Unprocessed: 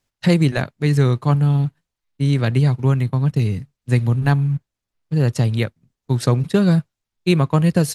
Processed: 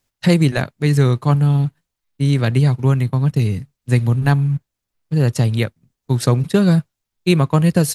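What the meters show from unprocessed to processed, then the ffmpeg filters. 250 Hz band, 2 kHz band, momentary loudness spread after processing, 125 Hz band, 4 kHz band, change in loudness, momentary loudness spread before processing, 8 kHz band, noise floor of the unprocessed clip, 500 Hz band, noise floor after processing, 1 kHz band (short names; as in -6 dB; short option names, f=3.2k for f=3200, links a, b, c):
+1.5 dB, +1.5 dB, 8 LU, +1.5 dB, +2.5 dB, +1.5 dB, 8 LU, n/a, -84 dBFS, +1.5 dB, -81 dBFS, +1.5 dB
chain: -af "highshelf=f=9.9k:g=7.5,volume=1.5dB"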